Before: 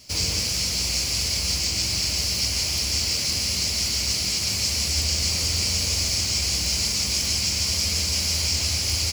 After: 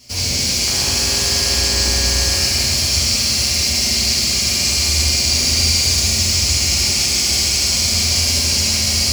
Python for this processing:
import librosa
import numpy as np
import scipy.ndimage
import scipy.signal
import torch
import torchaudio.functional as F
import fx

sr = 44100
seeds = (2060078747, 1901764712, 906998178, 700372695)

y = fx.dmg_buzz(x, sr, base_hz=50.0, harmonics=39, level_db=-37.0, tilt_db=0, odd_only=False, at=(0.66, 2.36), fade=0.02)
y = fx.rev_fdn(y, sr, rt60_s=3.5, lf_ratio=1.0, hf_ratio=0.9, size_ms=25.0, drr_db=-7.0)